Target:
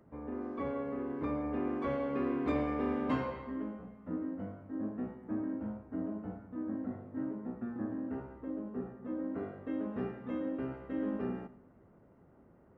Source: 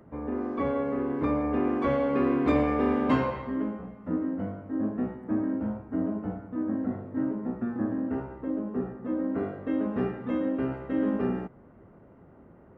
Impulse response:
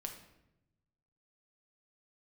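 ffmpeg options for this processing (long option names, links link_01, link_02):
-filter_complex "[0:a]asplit=2[link_01][link_02];[1:a]atrim=start_sample=2205,adelay=89[link_03];[link_02][link_03]afir=irnorm=-1:irlink=0,volume=-14.5dB[link_04];[link_01][link_04]amix=inputs=2:normalize=0,volume=-8.5dB"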